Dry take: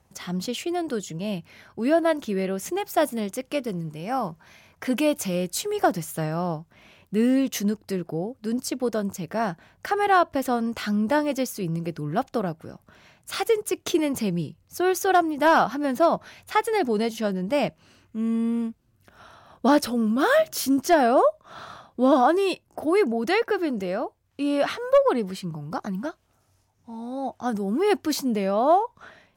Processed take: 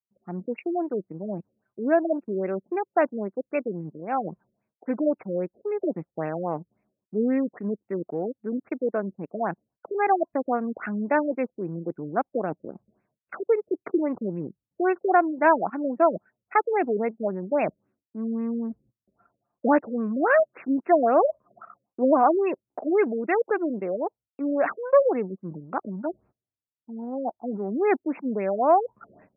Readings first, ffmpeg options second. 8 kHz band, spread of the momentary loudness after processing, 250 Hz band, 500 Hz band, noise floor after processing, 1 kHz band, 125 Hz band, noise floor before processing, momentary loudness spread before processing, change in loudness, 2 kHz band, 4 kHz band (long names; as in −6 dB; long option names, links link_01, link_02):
below −40 dB, 14 LU, −3.0 dB, −0.5 dB, below −85 dBFS, −1.0 dB, −6.0 dB, −65 dBFS, 12 LU, −1.5 dB, −2.5 dB, below −30 dB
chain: -af "agate=range=-26dB:threshold=-54dB:ratio=16:detection=peak,anlmdn=39.8,highshelf=frequency=2500:gain=5,areverse,acompressor=mode=upward:threshold=-21dB:ratio=2.5,areverse,highpass=270,lowpass=5500,afftfilt=real='re*lt(b*sr/1024,590*pow(2800/590,0.5+0.5*sin(2*PI*3.7*pts/sr)))':imag='im*lt(b*sr/1024,590*pow(2800/590,0.5+0.5*sin(2*PI*3.7*pts/sr)))':win_size=1024:overlap=0.75"